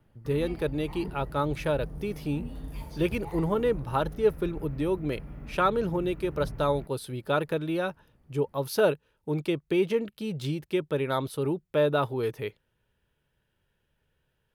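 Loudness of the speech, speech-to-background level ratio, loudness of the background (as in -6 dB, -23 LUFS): -29.5 LUFS, 12.5 dB, -42.0 LUFS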